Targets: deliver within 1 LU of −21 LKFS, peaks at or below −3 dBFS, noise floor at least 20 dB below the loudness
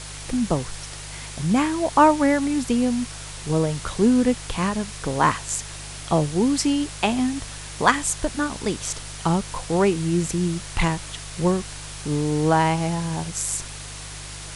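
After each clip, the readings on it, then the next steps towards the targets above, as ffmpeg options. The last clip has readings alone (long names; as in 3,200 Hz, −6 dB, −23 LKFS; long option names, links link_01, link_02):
mains hum 50 Hz; hum harmonics up to 150 Hz; level of the hum −37 dBFS; background noise floor −36 dBFS; target noise floor −43 dBFS; integrated loudness −23.0 LKFS; sample peak −1.0 dBFS; target loudness −21.0 LKFS
→ -af "bandreject=frequency=50:width_type=h:width=4,bandreject=frequency=100:width_type=h:width=4,bandreject=frequency=150:width_type=h:width=4"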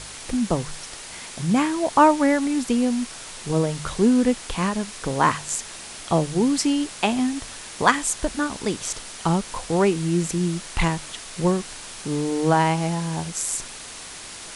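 mains hum none found; background noise floor −38 dBFS; target noise floor −43 dBFS
→ -af "afftdn=noise_reduction=6:noise_floor=-38"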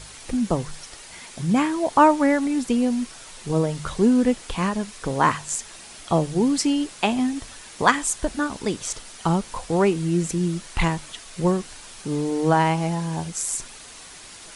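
background noise floor −43 dBFS; integrated loudness −23.0 LKFS; sample peak −1.5 dBFS; target loudness −21.0 LKFS
→ -af "volume=2dB,alimiter=limit=-3dB:level=0:latency=1"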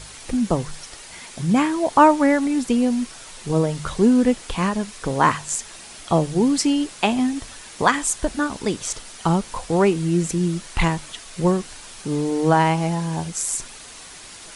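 integrated loudness −21.0 LKFS; sample peak −3.0 dBFS; background noise floor −41 dBFS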